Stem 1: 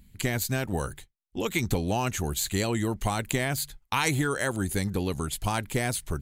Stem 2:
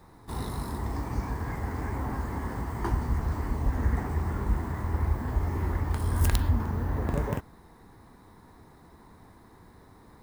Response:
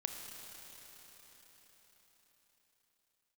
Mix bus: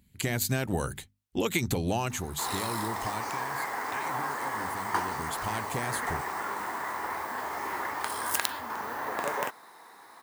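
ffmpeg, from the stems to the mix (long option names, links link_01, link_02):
-filter_complex "[0:a]bandreject=frequency=50:width_type=h:width=6,bandreject=frequency=100:width_type=h:width=6,bandreject=frequency=150:width_type=h:width=6,bandreject=frequency=200:width_type=h:width=6,bandreject=frequency=250:width_type=h:width=6,acompressor=threshold=-29dB:ratio=6,volume=3.5dB,afade=type=out:start_time=1.95:duration=0.31:silence=0.446684,afade=type=out:start_time=3.09:duration=0.23:silence=0.375837,afade=type=in:start_time=4.95:duration=0.59:silence=0.334965[link_01];[1:a]highpass=800,adelay=2100,volume=-2dB[link_02];[link_01][link_02]amix=inputs=2:normalize=0,highpass=64,dynaudnorm=framelen=140:gausssize=3:maxgain=11dB"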